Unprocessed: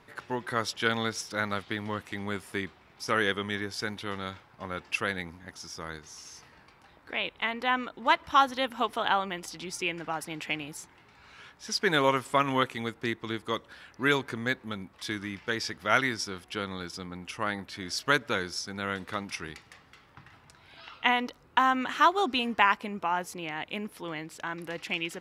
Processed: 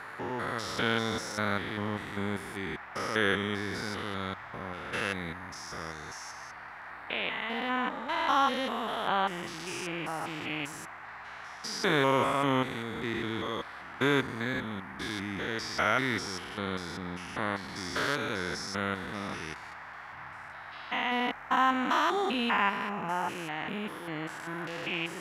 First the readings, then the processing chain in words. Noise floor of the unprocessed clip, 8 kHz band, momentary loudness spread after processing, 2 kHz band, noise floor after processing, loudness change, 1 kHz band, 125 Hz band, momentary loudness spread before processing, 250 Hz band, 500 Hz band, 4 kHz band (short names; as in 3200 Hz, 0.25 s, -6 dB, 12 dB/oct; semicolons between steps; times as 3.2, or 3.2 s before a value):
-59 dBFS, -3.0 dB, 14 LU, -1.5 dB, -45 dBFS, -1.5 dB, -2.0 dB, +1.5 dB, 15 LU, +0.5 dB, -0.5 dB, -2.0 dB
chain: stepped spectrum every 0.2 s; band noise 690–2000 Hz -48 dBFS; gain +2.5 dB